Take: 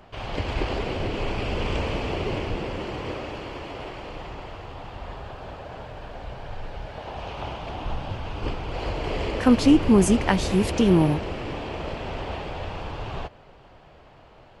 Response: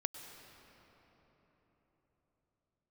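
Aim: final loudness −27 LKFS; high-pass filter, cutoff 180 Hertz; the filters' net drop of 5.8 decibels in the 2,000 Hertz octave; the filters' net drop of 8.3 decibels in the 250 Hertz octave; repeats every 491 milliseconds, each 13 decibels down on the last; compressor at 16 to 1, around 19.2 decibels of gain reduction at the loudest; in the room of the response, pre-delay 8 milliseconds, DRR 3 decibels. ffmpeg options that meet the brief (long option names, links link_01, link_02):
-filter_complex "[0:a]highpass=180,equalizer=frequency=250:width_type=o:gain=-9,equalizer=frequency=2000:width_type=o:gain=-7.5,acompressor=threshold=-38dB:ratio=16,aecho=1:1:491|982|1473:0.224|0.0493|0.0108,asplit=2[link_01][link_02];[1:a]atrim=start_sample=2205,adelay=8[link_03];[link_02][link_03]afir=irnorm=-1:irlink=0,volume=-3dB[link_04];[link_01][link_04]amix=inputs=2:normalize=0,volume=13.5dB"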